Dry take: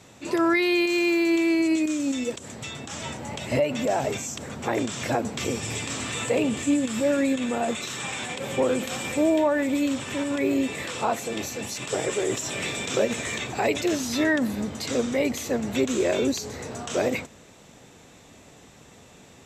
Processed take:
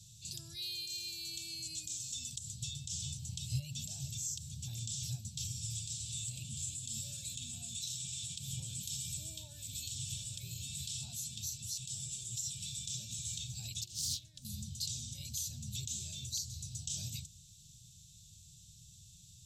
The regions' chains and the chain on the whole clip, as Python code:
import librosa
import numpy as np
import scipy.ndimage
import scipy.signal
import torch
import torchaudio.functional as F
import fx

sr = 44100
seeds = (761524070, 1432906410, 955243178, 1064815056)

y = fx.chain(x, sr, fx.over_compress(threshold_db=-29.0, ratio=-1.0),
    fx.doppler_dist(depth_ms=0.24), at=(13.83, 14.45))
y = scipy.signal.sosfilt(scipy.signal.cheby2(4, 40, [260.0, 2100.0], 'bandstop', fs=sr, output='sos'), y)
y = fx.rider(y, sr, range_db=3, speed_s=0.5)
y = y * 10.0 ** (-3.5 / 20.0)